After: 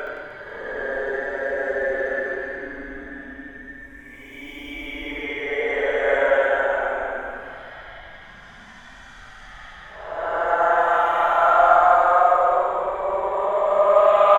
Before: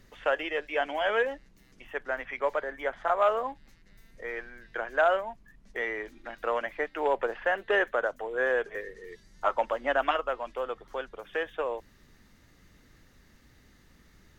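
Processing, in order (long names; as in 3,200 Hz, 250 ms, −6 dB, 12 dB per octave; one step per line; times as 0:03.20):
extreme stretch with random phases 23×, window 0.05 s, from 0:02.60
reverse bouncing-ball delay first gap 70 ms, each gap 1.4×, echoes 5
level +6 dB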